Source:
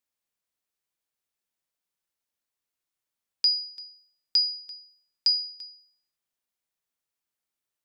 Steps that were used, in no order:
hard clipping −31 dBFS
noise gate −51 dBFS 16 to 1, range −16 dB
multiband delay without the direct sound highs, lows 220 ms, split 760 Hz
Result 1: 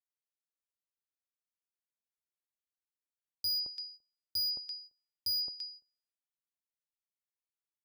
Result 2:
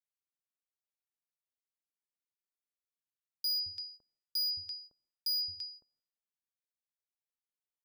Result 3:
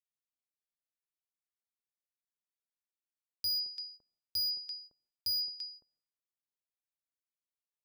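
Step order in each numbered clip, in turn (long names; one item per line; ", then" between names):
multiband delay without the direct sound, then hard clipping, then noise gate
hard clipping, then noise gate, then multiband delay without the direct sound
noise gate, then multiband delay without the direct sound, then hard clipping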